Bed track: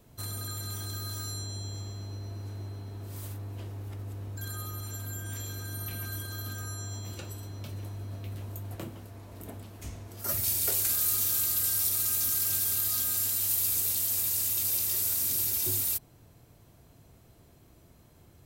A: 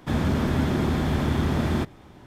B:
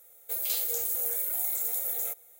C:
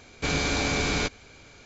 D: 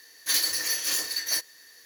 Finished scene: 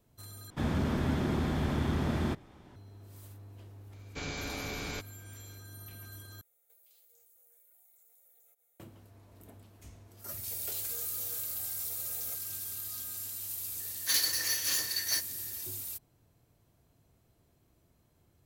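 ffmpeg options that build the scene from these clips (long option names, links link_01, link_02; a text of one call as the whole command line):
ffmpeg -i bed.wav -i cue0.wav -i cue1.wav -i cue2.wav -i cue3.wav -filter_complex "[2:a]asplit=2[link_01][link_02];[0:a]volume=-11dB[link_03];[link_01]acompressor=threshold=-45dB:ratio=6:attack=3.2:release=140:knee=1:detection=peak[link_04];[link_02]alimiter=limit=-24dB:level=0:latency=1:release=71[link_05];[4:a]asubboost=boost=10:cutoff=180[link_06];[link_03]asplit=3[link_07][link_08][link_09];[link_07]atrim=end=0.504[link_10];[1:a]atrim=end=2.26,asetpts=PTS-STARTPTS,volume=-7dB[link_11];[link_08]atrim=start=2.756:end=6.414[link_12];[link_04]atrim=end=2.39,asetpts=PTS-STARTPTS,volume=-17dB[link_13];[link_09]atrim=start=8.796[link_14];[3:a]atrim=end=1.65,asetpts=PTS-STARTPTS,volume=-12.5dB,afade=type=in:duration=0.004:curve=hsin,afade=type=out:start_time=1.646:duration=0.004:curve=hsin,adelay=173313S[link_15];[link_05]atrim=end=2.39,asetpts=PTS-STARTPTS,volume=-7dB,afade=type=in:duration=0.004:curve=hsin,afade=type=out:start_time=2.386:duration=0.004:curve=hsin,adelay=10220[link_16];[link_06]atrim=end=1.85,asetpts=PTS-STARTPTS,volume=-4dB,afade=type=in:duration=0.004:curve=hsin,afade=type=out:start_time=1.846:duration=0.004:curve=hsin,adelay=608580S[link_17];[link_10][link_11]acrossfade=duration=0.004:curve1=hsin:curve2=hsin[link_18];[link_18][link_12]acrossfade=duration=0.004:curve1=hsin:curve2=hsin[link_19];[link_19][link_13]acrossfade=duration=0.004:curve1=hsin:curve2=hsin[link_20];[link_20][link_14]acrossfade=duration=0.004:curve1=hsin:curve2=hsin[link_21];[link_21][link_15][link_16][link_17]amix=inputs=4:normalize=0" out.wav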